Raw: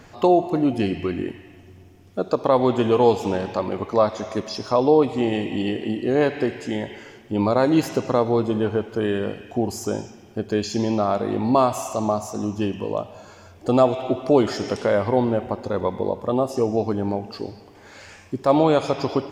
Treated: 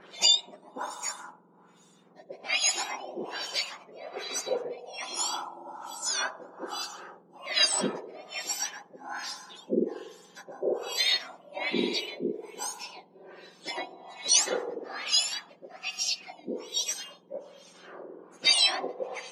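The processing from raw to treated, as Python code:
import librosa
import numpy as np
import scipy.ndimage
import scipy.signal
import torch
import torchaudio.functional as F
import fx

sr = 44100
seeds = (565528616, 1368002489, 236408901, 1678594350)

y = fx.octave_mirror(x, sr, pivot_hz=1600.0)
y = fx.filter_lfo_lowpass(y, sr, shape='sine', hz=1.2, low_hz=450.0, high_hz=6300.0, q=1.2)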